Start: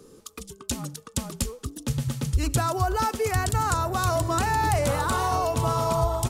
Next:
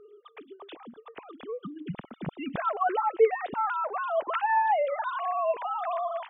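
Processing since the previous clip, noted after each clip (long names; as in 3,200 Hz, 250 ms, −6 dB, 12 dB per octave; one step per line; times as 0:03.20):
three sine waves on the formant tracks
level −4 dB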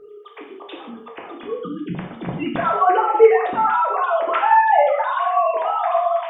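mains-hum notches 50/100/150/200/250 Hz
reverb whose tail is shaped and stops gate 220 ms falling, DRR −1.5 dB
level +6.5 dB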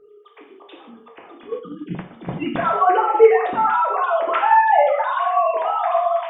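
noise gate −27 dBFS, range −7 dB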